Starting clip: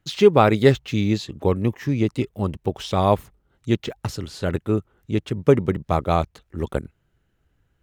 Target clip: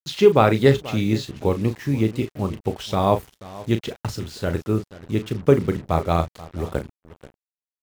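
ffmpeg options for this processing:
-filter_complex "[0:a]tremolo=f=62:d=0.182,asplit=2[a][b];[b]adelay=36,volume=-9.5dB[c];[a][c]amix=inputs=2:normalize=0,asplit=2[d][e];[e]aecho=0:1:484:0.119[f];[d][f]amix=inputs=2:normalize=0,acrusher=bits=6:mix=0:aa=0.5"

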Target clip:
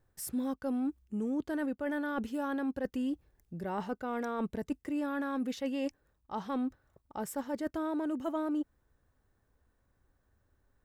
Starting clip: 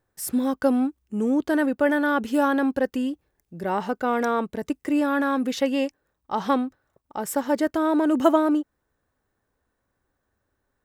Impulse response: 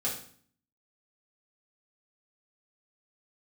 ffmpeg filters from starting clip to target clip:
-af "areverse,acompressor=threshold=-31dB:ratio=6,areverse,lowshelf=f=130:g=12,volume=-2.5dB"

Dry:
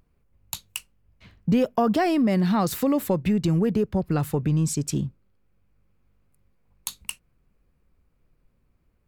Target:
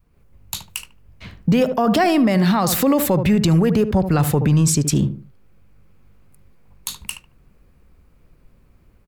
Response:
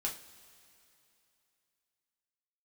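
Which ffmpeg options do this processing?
-filter_complex "[0:a]dynaudnorm=f=110:g=3:m=7dB,asplit=2[a][b];[b]adelay=74,lowpass=f=1.2k:p=1,volume=-12dB,asplit=2[c][d];[d]adelay=74,lowpass=f=1.2k:p=1,volume=0.31,asplit=2[e][f];[f]adelay=74,lowpass=f=1.2k:p=1,volume=0.31[g];[c][e][g]amix=inputs=3:normalize=0[h];[a][h]amix=inputs=2:normalize=0,acrossover=split=480[i][j];[i]acompressor=threshold=-16dB:ratio=6[k];[k][j]amix=inputs=2:normalize=0,adynamicequalizer=threshold=0.0447:dfrequency=350:dqfactor=1.1:tfrequency=350:tqfactor=1.1:attack=5:release=100:ratio=0.375:range=2:mode=cutabove:tftype=bell,alimiter=level_in=14dB:limit=-1dB:release=50:level=0:latency=1,volume=-8dB"

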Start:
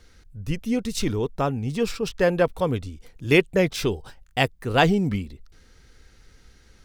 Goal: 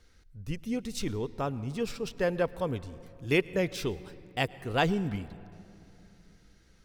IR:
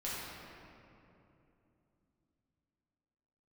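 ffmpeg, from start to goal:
-filter_complex "[0:a]asplit=2[a][b];[1:a]atrim=start_sample=2205,adelay=106[c];[b][c]afir=irnorm=-1:irlink=0,volume=-21.5dB[d];[a][d]amix=inputs=2:normalize=0,volume=-8dB"

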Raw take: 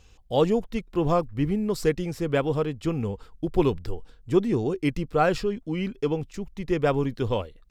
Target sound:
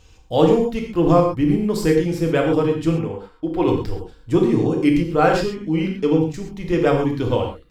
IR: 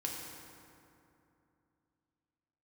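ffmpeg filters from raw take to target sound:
-filter_complex "[0:a]asettb=1/sr,asplit=3[a][b][c];[a]atrim=end=2.964[d];[b]atrim=start=2.96:end=3.68,asetpts=PTS-STARTPTS,afade=t=in:d=0.004:c=qsin,afade=t=out:st=0.716:d=0.004:c=qsin,bass=f=250:g=-11,treble=f=4k:g=-10[e];[c]atrim=start=3.676[f];[d][e]acrossfade=d=0.004:c1=hsin:c2=qsin[g];[g][f]acrossfade=d=0.004:c1=qsin:c2=hsin[h];[1:a]atrim=start_sample=2205,atrim=end_sample=6174[i];[h][i]afir=irnorm=-1:irlink=0,volume=5.5dB"

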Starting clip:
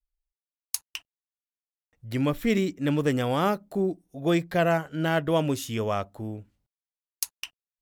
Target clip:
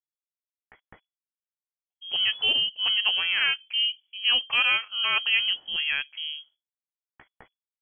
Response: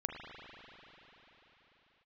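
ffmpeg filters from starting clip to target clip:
-af "agate=range=-33dB:threshold=-49dB:ratio=3:detection=peak,asetrate=62367,aresample=44100,atempo=0.707107,lowpass=f=2.9k:t=q:w=0.5098,lowpass=f=2.9k:t=q:w=0.6013,lowpass=f=2.9k:t=q:w=0.9,lowpass=f=2.9k:t=q:w=2.563,afreqshift=-3400"

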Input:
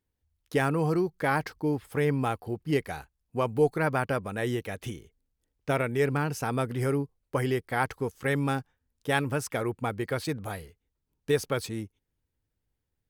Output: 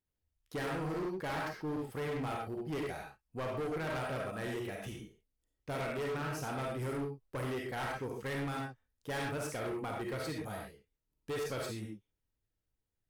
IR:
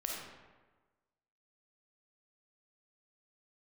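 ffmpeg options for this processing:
-filter_complex "[1:a]atrim=start_sample=2205,atrim=end_sample=6174[a];[0:a][a]afir=irnorm=-1:irlink=0,volume=27.5dB,asoftclip=hard,volume=-27.5dB,volume=-6.5dB"

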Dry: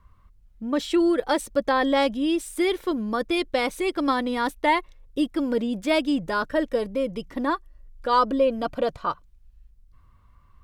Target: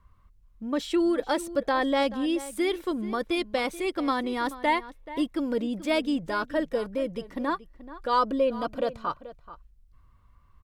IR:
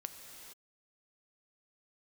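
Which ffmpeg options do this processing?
-filter_complex "[0:a]asplit=2[a][b];[b]adelay=431.5,volume=-15dB,highshelf=f=4k:g=-9.71[c];[a][c]amix=inputs=2:normalize=0,volume=-3.5dB"

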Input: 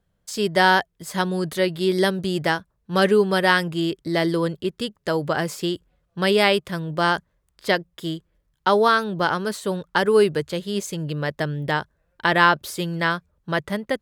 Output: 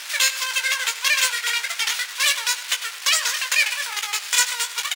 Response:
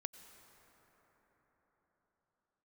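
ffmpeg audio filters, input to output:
-filter_complex "[0:a]aeval=exprs='val(0)+0.5*0.075*sgn(val(0))':c=same,asplit=2[a][b];[b]acompressor=threshold=-29dB:ratio=6,volume=-1dB[c];[a][c]amix=inputs=2:normalize=0,acrusher=samples=8:mix=1:aa=0.000001,adynamicsmooth=sensitivity=1:basefreq=920,aeval=exprs='abs(val(0))':c=same,highpass=680,lowpass=4.5k,aecho=1:1:277:0.15,asplit=2[d][e];[1:a]atrim=start_sample=2205,adelay=55[f];[e][f]afir=irnorm=-1:irlink=0,volume=-2.5dB[g];[d][g]amix=inputs=2:normalize=0,asetrate=124803,aresample=44100,volume=5dB"

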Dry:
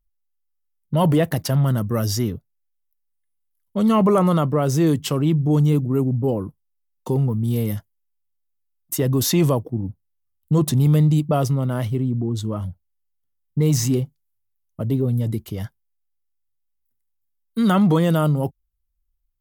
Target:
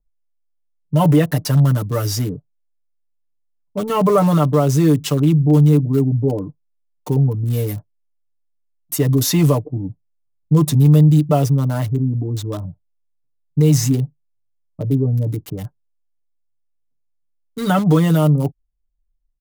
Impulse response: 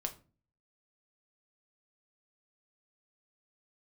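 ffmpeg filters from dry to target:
-filter_complex "[0:a]bandreject=f=3.2k:w=23,aecho=1:1:6.8:0.84,acrossover=split=480|1000[a][b][c];[c]acrusher=bits=5:mix=0:aa=0.000001[d];[a][b][d]amix=inputs=3:normalize=0"

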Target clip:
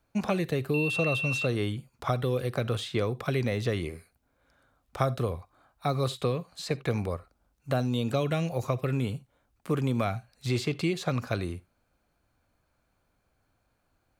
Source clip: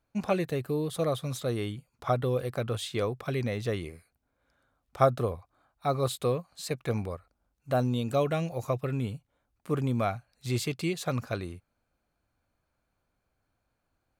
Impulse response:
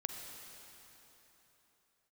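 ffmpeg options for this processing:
-filter_complex "[0:a]acrossover=split=310|1800|6100[a][b][c][d];[a]acompressor=threshold=-33dB:ratio=4[e];[b]acompressor=threshold=-35dB:ratio=4[f];[c]acompressor=threshold=-42dB:ratio=4[g];[d]acompressor=threshold=-59dB:ratio=4[h];[e][f][g][h]amix=inputs=4:normalize=0,asettb=1/sr,asplit=3[i][j][k];[i]atrim=end=0.744[l];[j]atrim=start=0.74:end=1.46,asetpts=PTS-STARTPTS,afade=t=in:d=0.004:c=qsin,afade=t=out:st=0.716:d=0.004:c=qsin,aeval=exprs='val(0)+0.0178*sin(2*PI*2700*n/s)':c=same[m];[k]atrim=start=1.456[n];[l][m]acrossfade=d=0.004:c1=hsin:c2=qsin[o];[o][n]acrossfade=d=0.004:c1=qsin:c2=hsin,asplit=2[p][q];[1:a]atrim=start_sample=2205,atrim=end_sample=3969[r];[q][r]afir=irnorm=-1:irlink=0,volume=-3.5dB[s];[p][s]amix=inputs=2:normalize=0,volume=1.5dB"

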